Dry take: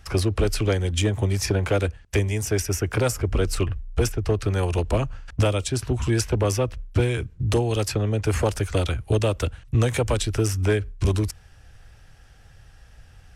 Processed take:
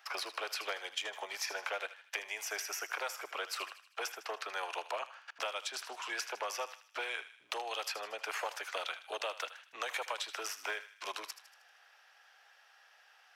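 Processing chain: high-pass 730 Hz 24 dB/octave; peaking EQ 8.8 kHz -13.5 dB 0.86 oct; compression, threshold -32 dBFS, peak gain reduction 7.5 dB; on a send: thinning echo 78 ms, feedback 54%, high-pass 1.1 kHz, level -12 dB; on the sum: trim -2 dB

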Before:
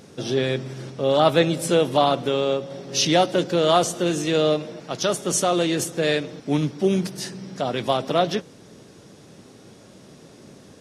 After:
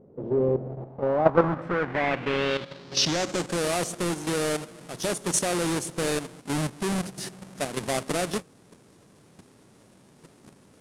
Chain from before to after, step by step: square wave that keeps the level; level held to a coarse grid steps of 10 dB; low-pass sweep 510 Hz -> 9.7 kHz, 0.59–3.64 s; trim -6 dB

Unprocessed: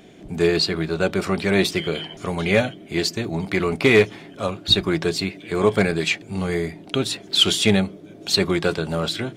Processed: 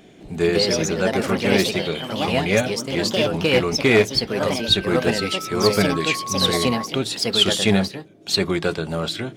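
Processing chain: 5.91–6.85 s: whistle 1.1 kHz -27 dBFS; ever faster or slower copies 209 ms, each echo +3 st, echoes 2; 7.84–8.29 s: upward expansion 1.5:1, over -39 dBFS; trim -1 dB

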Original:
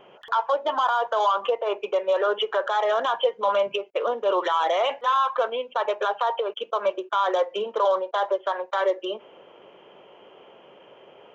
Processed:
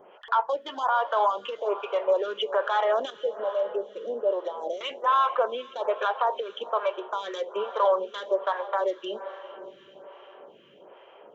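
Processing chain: 3.10–4.81 s: FFT filter 580 Hz 0 dB, 1.5 kHz -29 dB, 4.8 kHz -7 dB; echo that smears into a reverb 461 ms, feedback 55%, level -15 dB; lamp-driven phase shifter 1.2 Hz

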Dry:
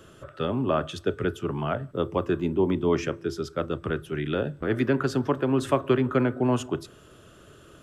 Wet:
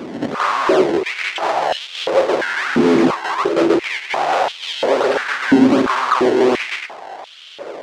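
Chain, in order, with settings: square wave that keeps the level; in parallel at -1.5 dB: compressor with a negative ratio -24 dBFS; on the sum: decimation with a swept rate 21×, swing 160% 1.3 Hz; hard clipper -23.5 dBFS, distortion -6 dB; distance through air 110 m; on a send: reverse echo 86 ms -8.5 dB; on the sum: step-sequenced high-pass 2.9 Hz 250–3200 Hz; trim +7 dB

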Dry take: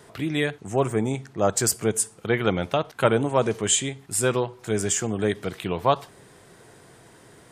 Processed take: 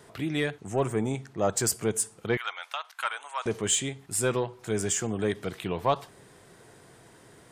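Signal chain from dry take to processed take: 2.37–3.46 s: high-pass 1 kHz 24 dB/octave; in parallel at -6 dB: saturation -19.5 dBFS, distortion -10 dB; on the sum: trim -6.5 dB

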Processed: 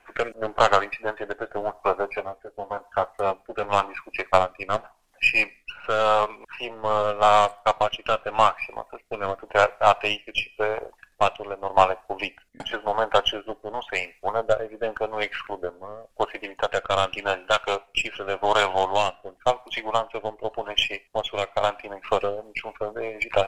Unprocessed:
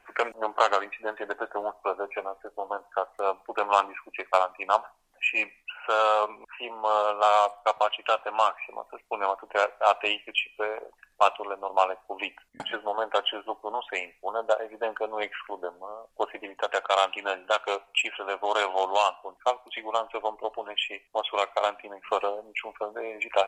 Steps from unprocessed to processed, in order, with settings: partial rectifier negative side -3 dB; 2.16–3.64 s: comb of notches 160 Hz; rotary cabinet horn 0.9 Hz, later 7 Hz, at 22.06 s; trim +7.5 dB

